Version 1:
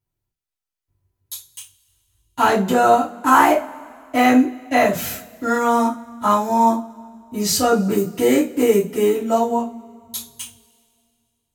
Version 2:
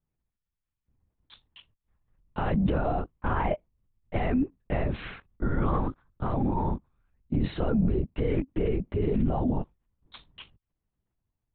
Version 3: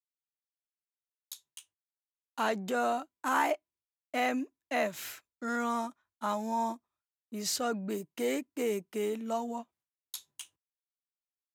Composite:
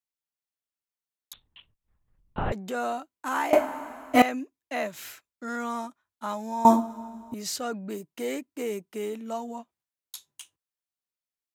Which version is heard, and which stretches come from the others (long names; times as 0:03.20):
3
0:01.33–0:02.52: punch in from 2
0:03.53–0:04.22: punch in from 1
0:06.65–0:07.34: punch in from 1